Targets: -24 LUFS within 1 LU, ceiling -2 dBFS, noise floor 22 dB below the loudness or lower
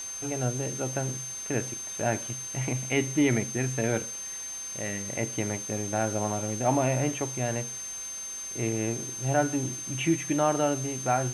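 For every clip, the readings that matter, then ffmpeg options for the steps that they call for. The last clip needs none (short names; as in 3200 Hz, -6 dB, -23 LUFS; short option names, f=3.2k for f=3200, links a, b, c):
steady tone 6300 Hz; tone level -35 dBFS; noise floor -38 dBFS; noise floor target -51 dBFS; loudness -29.0 LUFS; peak -11.0 dBFS; loudness target -24.0 LUFS
-> -af "bandreject=f=6.3k:w=30"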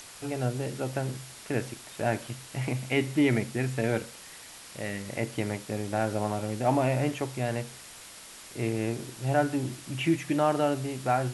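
steady tone none; noise floor -47 dBFS; noise floor target -52 dBFS
-> -af "afftdn=nr=6:nf=-47"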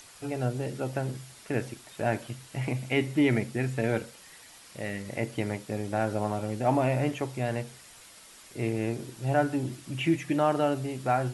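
noise floor -52 dBFS; loudness -30.0 LUFS; peak -11.5 dBFS; loudness target -24.0 LUFS
-> -af "volume=6dB"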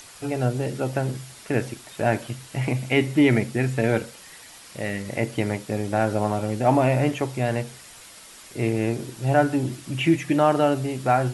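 loudness -24.0 LUFS; peak -5.5 dBFS; noise floor -46 dBFS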